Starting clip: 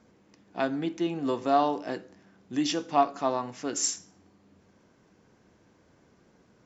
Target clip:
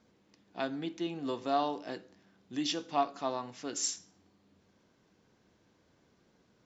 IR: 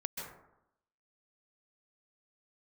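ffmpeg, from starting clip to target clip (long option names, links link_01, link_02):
-af "equalizer=frequency=3800:width_type=o:width=0.96:gain=6.5,volume=-7dB"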